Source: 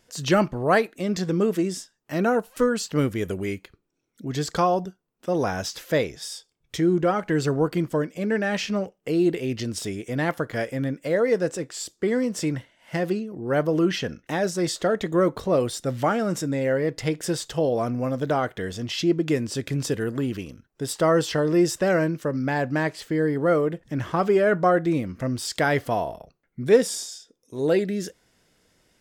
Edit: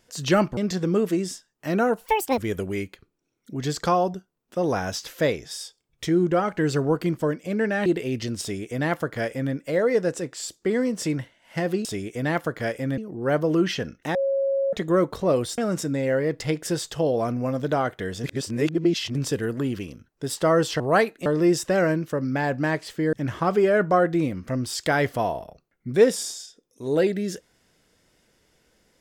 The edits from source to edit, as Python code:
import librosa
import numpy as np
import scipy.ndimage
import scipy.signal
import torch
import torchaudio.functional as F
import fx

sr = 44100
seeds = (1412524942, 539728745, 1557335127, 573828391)

y = fx.edit(x, sr, fx.move(start_s=0.57, length_s=0.46, to_s=21.38),
    fx.speed_span(start_s=2.52, length_s=0.57, speed=1.79),
    fx.cut(start_s=8.57, length_s=0.66),
    fx.duplicate(start_s=9.78, length_s=1.13, to_s=13.22),
    fx.bleep(start_s=14.39, length_s=0.58, hz=547.0, db=-20.0),
    fx.cut(start_s=15.82, length_s=0.34),
    fx.reverse_span(start_s=18.82, length_s=0.91),
    fx.cut(start_s=23.25, length_s=0.6), tone=tone)